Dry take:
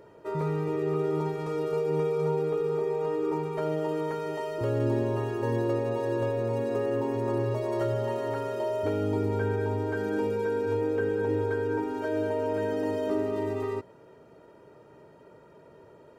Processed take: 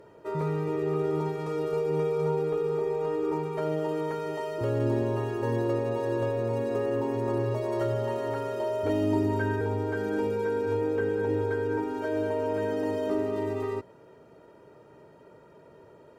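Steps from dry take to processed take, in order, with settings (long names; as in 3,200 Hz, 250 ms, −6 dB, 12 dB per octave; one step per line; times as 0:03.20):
0:08.89–0:09.61: comb filter 3.2 ms, depth 83%
harmonic generator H 2 −22 dB, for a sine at −14.5 dBFS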